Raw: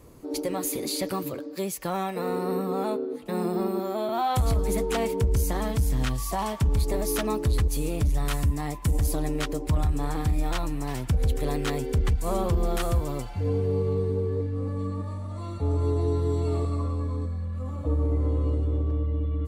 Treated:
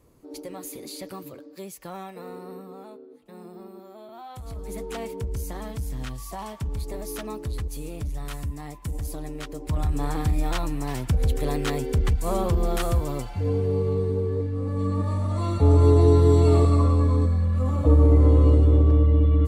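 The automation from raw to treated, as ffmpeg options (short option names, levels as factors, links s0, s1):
-af "volume=6.68,afade=t=out:st=1.96:d=0.94:silence=0.421697,afade=t=in:st=4.42:d=0.44:silence=0.354813,afade=t=in:st=9.52:d=0.49:silence=0.375837,afade=t=in:st=14.65:d=0.58:silence=0.421697"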